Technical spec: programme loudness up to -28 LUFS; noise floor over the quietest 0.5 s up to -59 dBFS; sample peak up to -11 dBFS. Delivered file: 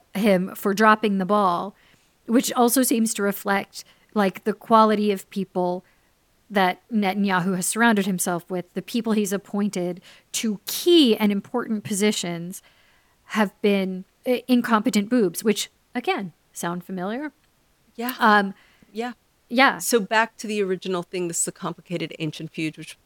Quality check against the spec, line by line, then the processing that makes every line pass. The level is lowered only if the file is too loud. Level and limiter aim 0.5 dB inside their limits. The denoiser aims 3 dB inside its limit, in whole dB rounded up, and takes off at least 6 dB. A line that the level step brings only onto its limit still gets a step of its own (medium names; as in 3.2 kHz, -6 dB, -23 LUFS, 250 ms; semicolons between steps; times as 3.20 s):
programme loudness -22.5 LUFS: fail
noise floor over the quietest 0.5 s -63 dBFS: pass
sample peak -2.5 dBFS: fail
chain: trim -6 dB; peak limiter -11.5 dBFS